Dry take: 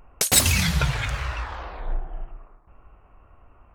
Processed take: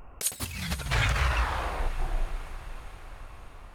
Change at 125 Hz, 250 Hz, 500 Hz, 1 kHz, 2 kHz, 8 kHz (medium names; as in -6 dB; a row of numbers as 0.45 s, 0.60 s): -4.5 dB, -9.0 dB, -3.0 dB, 0.0 dB, -3.0 dB, -12.0 dB